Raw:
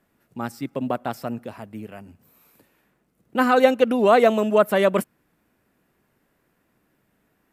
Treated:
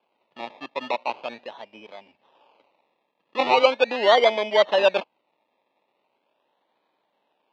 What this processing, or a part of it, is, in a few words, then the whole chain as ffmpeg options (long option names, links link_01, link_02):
circuit-bent sampling toy: -af "acrusher=samples=23:mix=1:aa=0.000001:lfo=1:lforange=13.8:lforate=0.4,highpass=460,equalizer=frequency=570:width_type=q:width=4:gain=6,equalizer=frequency=900:width_type=q:width=4:gain=9,equalizer=frequency=1400:width_type=q:width=4:gain=-6,equalizer=frequency=2600:width_type=q:width=4:gain=7,equalizer=frequency=3700:width_type=q:width=4:gain=5,lowpass=frequency=4100:width=0.5412,lowpass=frequency=4100:width=1.3066,volume=-3dB"